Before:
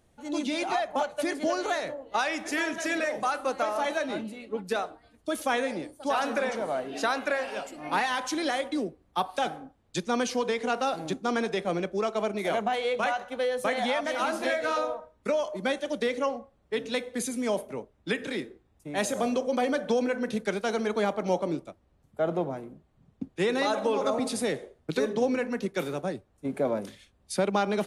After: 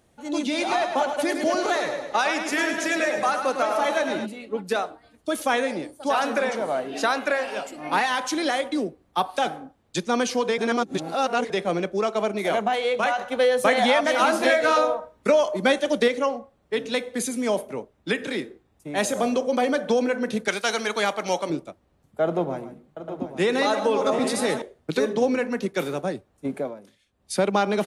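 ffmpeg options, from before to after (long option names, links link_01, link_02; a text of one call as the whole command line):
ffmpeg -i in.wav -filter_complex "[0:a]asplit=3[link_01][link_02][link_03];[link_01]afade=type=out:start_time=0.57:duration=0.02[link_04];[link_02]aecho=1:1:105|210|315|420|525|630:0.447|0.223|0.112|0.0558|0.0279|0.014,afade=type=in:start_time=0.57:duration=0.02,afade=type=out:start_time=4.25:duration=0.02[link_05];[link_03]afade=type=in:start_time=4.25:duration=0.02[link_06];[link_04][link_05][link_06]amix=inputs=3:normalize=0,asettb=1/sr,asplit=3[link_07][link_08][link_09];[link_07]atrim=end=20.484[link_10];[link_08]atrim=start=20.48:end=21.5,asetpts=PTS-STARTPTS,afade=type=in:duration=0.004:curve=qsin,afade=type=out:start_time=1.016:duration=0.004:curve=qsin,tiltshelf=frequency=860:gain=-8[link_11];[link_09]atrim=start=21.496[link_12];[link_10][link_11]acrossfade=duration=0.004:curve1=hsin:curve2=qsin[link_13];[link_13][link_12]acrossfade=duration=0.004:curve1=qsin:curve2=hsin,asettb=1/sr,asplit=3[link_14][link_15][link_16];[link_14]atrim=end=22.244[link_17];[link_15]atrim=start=22.24:end=24.62,asetpts=PTS-STARTPTS,afade=type=in:duration=0.004:curve=qsin,afade=type=out:start_time=2.376:duration=0.004:curve=qsin,aecho=1:1:127|140|725|838:0.15|0.178|0.266|0.282,atrim=end_sample=104958[link_18];[link_16]atrim=start=24.616[link_19];[link_17][link_18]acrossfade=duration=0.004:curve1=hsin:curve2=qsin[link_20];[link_20][link_19]acrossfade=duration=0.004:curve1=qsin:curve2=hsin,asplit=7[link_21][link_22][link_23][link_24][link_25][link_26][link_27];[link_21]atrim=end=10.582[link_28];[link_22]atrim=start=10.578:end=11.502,asetpts=PTS-STARTPTS,areverse[link_29];[link_23]atrim=start=11.498:end=13.182[link_30];[link_24]atrim=start=13.178:end=16.082,asetpts=PTS-STARTPTS,volume=4dB[link_31];[link_25]atrim=start=16.078:end=26.75,asetpts=PTS-STARTPTS,afade=type=out:start_time=10.382:duration=0.29:silence=0.158489[link_32];[link_26]atrim=start=26.75:end=27.05,asetpts=PTS-STARTPTS,volume=-16dB[link_33];[link_27]atrim=start=27.05,asetpts=PTS-STARTPTS,afade=type=in:duration=0.29:silence=0.158489[link_34];[link_28][link_29]acrossfade=duration=0.004:curve1=hsin:curve2=hsin[link_35];[link_35][link_30]acrossfade=duration=0.004:curve1=hsin:curve2=hsin[link_36];[link_36][link_31]acrossfade=duration=0.004:curve1=hsin:curve2=hsin[link_37];[link_32][link_33][link_34]concat=n=3:v=0:a=1[link_38];[link_37][link_38]acrossfade=duration=0.004:curve1=hsin:curve2=hsin,lowshelf=frequency=65:gain=-10.5,volume=4.5dB" out.wav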